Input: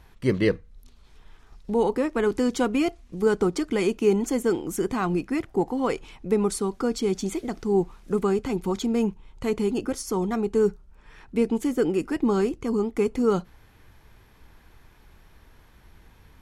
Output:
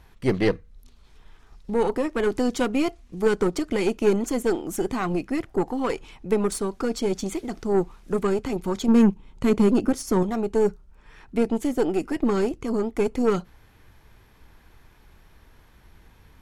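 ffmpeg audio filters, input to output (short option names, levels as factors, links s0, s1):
-filter_complex "[0:a]asettb=1/sr,asplit=3[s0][s1][s2];[s0]atrim=end=8.884[s3];[s1]atrim=start=8.88:end=10.23,asetpts=PTS-STARTPTS,afade=t=in:d=0.004:c=qsin,afade=t=out:st=1.346:d=0.004:c=qsin,equalizer=f=220:t=o:w=1.3:g=8.5[s4];[s2]atrim=start=10.226[s5];[s3][s4]acrossfade=d=0.004:c1=hsin:c2=qsin[s6];[s6][s5]acrossfade=d=0.004:c1=qsin:c2=hsin,aeval=exprs='0.355*(cos(1*acos(clip(val(0)/0.355,-1,1)))-cos(1*PI/2))+0.0316*(cos(6*acos(clip(val(0)/0.355,-1,1)))-cos(6*PI/2))':c=same"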